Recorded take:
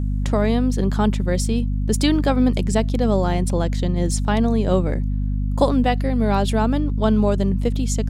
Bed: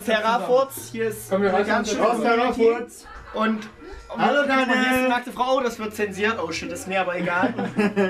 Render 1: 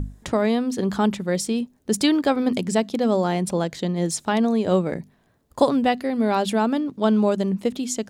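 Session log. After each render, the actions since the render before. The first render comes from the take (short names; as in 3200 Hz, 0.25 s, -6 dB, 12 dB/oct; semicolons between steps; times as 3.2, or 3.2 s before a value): notches 50/100/150/200/250 Hz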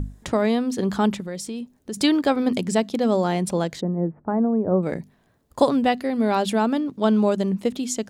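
1.2–1.97 compressor 2.5:1, threshold -31 dBFS; 3.81–4.83 Gaussian blur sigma 7.4 samples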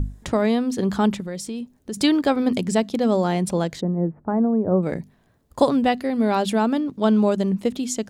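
low shelf 130 Hz +5 dB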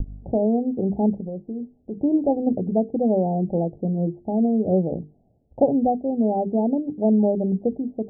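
steep low-pass 810 Hz 96 dB/oct; notches 50/100/150/200/250/300/350/400/450 Hz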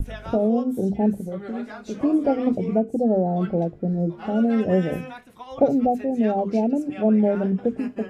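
add bed -17.5 dB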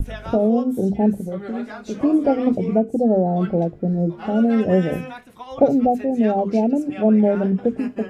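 gain +3 dB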